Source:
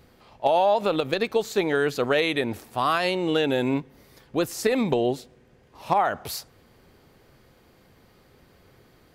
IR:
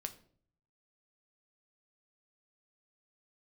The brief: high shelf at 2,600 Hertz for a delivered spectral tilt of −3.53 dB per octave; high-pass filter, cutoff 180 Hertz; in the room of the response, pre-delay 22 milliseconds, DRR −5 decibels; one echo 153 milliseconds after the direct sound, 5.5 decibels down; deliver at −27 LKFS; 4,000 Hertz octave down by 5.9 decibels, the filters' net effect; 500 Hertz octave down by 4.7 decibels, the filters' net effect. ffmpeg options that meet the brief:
-filter_complex "[0:a]highpass=180,equalizer=frequency=500:width_type=o:gain=-5.5,highshelf=frequency=2600:gain=-3.5,equalizer=frequency=4000:width_type=o:gain=-4.5,aecho=1:1:153:0.531,asplit=2[link_01][link_02];[1:a]atrim=start_sample=2205,adelay=22[link_03];[link_02][link_03]afir=irnorm=-1:irlink=0,volume=7dB[link_04];[link_01][link_04]amix=inputs=2:normalize=0,volume=-6dB"

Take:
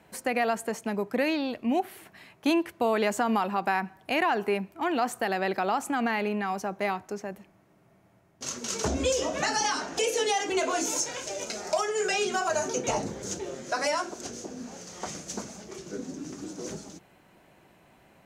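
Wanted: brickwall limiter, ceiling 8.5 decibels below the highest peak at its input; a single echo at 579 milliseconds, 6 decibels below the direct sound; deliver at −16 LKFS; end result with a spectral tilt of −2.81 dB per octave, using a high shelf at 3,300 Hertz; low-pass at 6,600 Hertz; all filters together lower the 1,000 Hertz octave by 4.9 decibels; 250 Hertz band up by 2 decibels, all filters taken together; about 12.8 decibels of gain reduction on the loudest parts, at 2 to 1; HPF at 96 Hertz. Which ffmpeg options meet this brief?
ffmpeg -i in.wav -af "highpass=96,lowpass=6600,equalizer=frequency=250:width_type=o:gain=3,equalizer=frequency=1000:width_type=o:gain=-8,highshelf=frequency=3300:gain=6.5,acompressor=threshold=-44dB:ratio=2,alimiter=level_in=5.5dB:limit=-24dB:level=0:latency=1,volume=-5.5dB,aecho=1:1:579:0.501,volume=23.5dB" out.wav

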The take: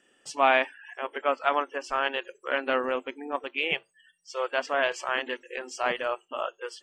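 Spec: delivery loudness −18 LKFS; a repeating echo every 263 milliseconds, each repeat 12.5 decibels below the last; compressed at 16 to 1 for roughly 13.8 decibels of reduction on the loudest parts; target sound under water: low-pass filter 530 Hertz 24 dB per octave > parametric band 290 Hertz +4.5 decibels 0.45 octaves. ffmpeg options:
ffmpeg -i in.wav -af "acompressor=threshold=-29dB:ratio=16,lowpass=frequency=530:width=0.5412,lowpass=frequency=530:width=1.3066,equalizer=frequency=290:width_type=o:width=0.45:gain=4.5,aecho=1:1:263|526|789:0.237|0.0569|0.0137,volume=24dB" out.wav

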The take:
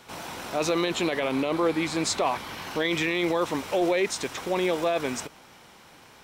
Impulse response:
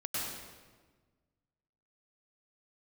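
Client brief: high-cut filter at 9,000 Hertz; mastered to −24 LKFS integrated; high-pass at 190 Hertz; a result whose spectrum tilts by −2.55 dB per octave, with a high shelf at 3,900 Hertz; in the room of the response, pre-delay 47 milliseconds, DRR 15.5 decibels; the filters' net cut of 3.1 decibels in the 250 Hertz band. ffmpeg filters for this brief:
-filter_complex "[0:a]highpass=190,lowpass=9000,equalizer=frequency=250:width_type=o:gain=-4,highshelf=frequency=3900:gain=3,asplit=2[link_01][link_02];[1:a]atrim=start_sample=2205,adelay=47[link_03];[link_02][link_03]afir=irnorm=-1:irlink=0,volume=-20dB[link_04];[link_01][link_04]amix=inputs=2:normalize=0,volume=3dB"

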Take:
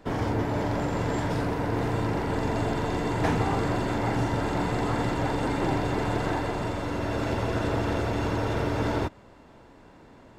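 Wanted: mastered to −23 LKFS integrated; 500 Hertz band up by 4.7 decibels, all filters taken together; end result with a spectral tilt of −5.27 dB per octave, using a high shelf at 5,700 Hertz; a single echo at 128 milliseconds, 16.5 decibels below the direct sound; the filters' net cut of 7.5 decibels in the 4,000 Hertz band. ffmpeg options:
ffmpeg -i in.wav -af "equalizer=frequency=500:width_type=o:gain=6,equalizer=frequency=4000:width_type=o:gain=-8,highshelf=frequency=5700:gain=-5.5,aecho=1:1:128:0.15,volume=2.5dB" out.wav

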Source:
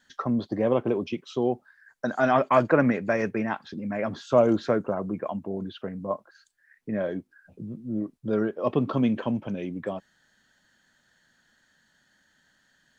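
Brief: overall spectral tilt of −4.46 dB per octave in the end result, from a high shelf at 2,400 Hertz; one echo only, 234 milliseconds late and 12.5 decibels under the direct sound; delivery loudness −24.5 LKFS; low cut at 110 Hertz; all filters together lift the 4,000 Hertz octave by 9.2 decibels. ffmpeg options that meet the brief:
ffmpeg -i in.wav -af "highpass=110,highshelf=frequency=2400:gain=3.5,equalizer=frequency=4000:width_type=o:gain=8.5,aecho=1:1:234:0.237,volume=2dB" out.wav

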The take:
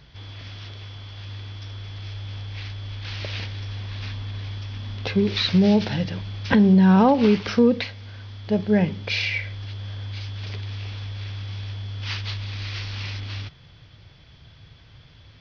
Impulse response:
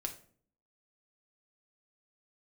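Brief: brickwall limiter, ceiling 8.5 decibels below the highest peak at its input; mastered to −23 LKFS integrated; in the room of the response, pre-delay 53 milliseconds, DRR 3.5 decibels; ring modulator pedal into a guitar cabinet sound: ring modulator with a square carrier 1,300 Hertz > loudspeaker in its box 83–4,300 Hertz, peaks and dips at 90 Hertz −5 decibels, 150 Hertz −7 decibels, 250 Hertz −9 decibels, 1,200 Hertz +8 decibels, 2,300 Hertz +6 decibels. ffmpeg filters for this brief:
-filter_complex "[0:a]alimiter=limit=-13.5dB:level=0:latency=1,asplit=2[link_01][link_02];[1:a]atrim=start_sample=2205,adelay=53[link_03];[link_02][link_03]afir=irnorm=-1:irlink=0,volume=-3dB[link_04];[link_01][link_04]amix=inputs=2:normalize=0,aeval=exprs='val(0)*sgn(sin(2*PI*1300*n/s))':channel_layout=same,highpass=83,equalizer=frequency=90:width_type=q:width=4:gain=-5,equalizer=frequency=150:width_type=q:width=4:gain=-7,equalizer=frequency=250:width_type=q:width=4:gain=-9,equalizer=frequency=1200:width_type=q:width=4:gain=8,equalizer=frequency=2300:width_type=q:width=4:gain=6,lowpass=frequency=4300:width=0.5412,lowpass=frequency=4300:width=1.3066,volume=-3dB"

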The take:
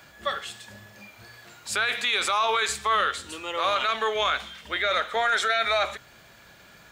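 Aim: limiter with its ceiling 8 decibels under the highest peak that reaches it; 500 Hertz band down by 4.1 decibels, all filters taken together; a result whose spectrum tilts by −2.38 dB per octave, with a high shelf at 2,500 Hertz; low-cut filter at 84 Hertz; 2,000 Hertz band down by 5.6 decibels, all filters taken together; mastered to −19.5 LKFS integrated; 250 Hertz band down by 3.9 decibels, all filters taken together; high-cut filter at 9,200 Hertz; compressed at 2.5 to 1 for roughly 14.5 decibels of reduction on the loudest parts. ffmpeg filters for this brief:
ffmpeg -i in.wav -af "highpass=84,lowpass=9200,equalizer=frequency=250:width_type=o:gain=-3.5,equalizer=frequency=500:width_type=o:gain=-4,equalizer=frequency=2000:width_type=o:gain=-3.5,highshelf=frequency=2500:gain=-8,acompressor=threshold=-47dB:ratio=2.5,volume=28dB,alimiter=limit=-9.5dB:level=0:latency=1" out.wav

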